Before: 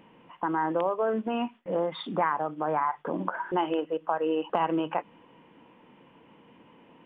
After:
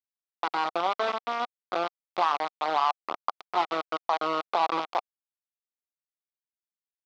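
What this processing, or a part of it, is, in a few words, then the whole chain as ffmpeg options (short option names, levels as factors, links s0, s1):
hand-held game console: -af "acrusher=bits=3:mix=0:aa=0.000001,highpass=410,equalizer=f=470:t=q:w=4:g=-4,equalizer=f=750:t=q:w=4:g=6,equalizer=f=1200:t=q:w=4:g=7,equalizer=f=1700:t=q:w=4:g=-8,equalizer=f=2800:t=q:w=4:g=-4,lowpass=f=4000:w=0.5412,lowpass=f=4000:w=1.3066,volume=0.841"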